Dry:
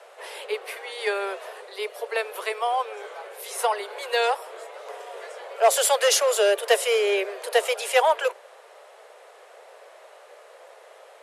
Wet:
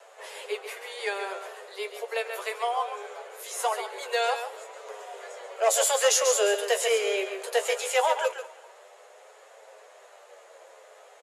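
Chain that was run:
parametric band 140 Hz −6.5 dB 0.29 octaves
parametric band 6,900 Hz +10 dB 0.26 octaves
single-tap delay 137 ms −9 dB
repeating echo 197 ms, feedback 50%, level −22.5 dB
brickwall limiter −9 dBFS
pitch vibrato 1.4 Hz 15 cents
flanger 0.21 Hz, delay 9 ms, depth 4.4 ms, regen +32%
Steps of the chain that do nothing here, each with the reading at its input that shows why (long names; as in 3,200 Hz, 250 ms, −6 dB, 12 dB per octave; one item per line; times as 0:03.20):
parametric band 140 Hz: nothing at its input below 360 Hz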